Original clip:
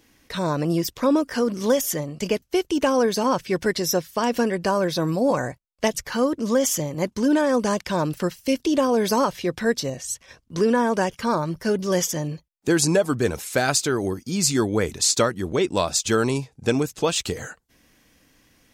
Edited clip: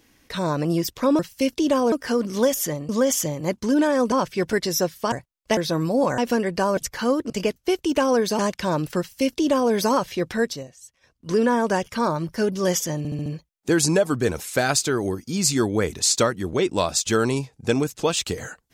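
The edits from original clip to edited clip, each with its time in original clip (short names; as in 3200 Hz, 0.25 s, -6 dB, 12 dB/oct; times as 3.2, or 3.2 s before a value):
2.16–3.25 swap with 6.43–7.66
4.25–4.84 swap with 5.45–5.9
8.26–8.99 copy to 1.19
9.64–10.65 dip -16 dB, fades 0.36 s
12.25 stutter 0.07 s, 5 plays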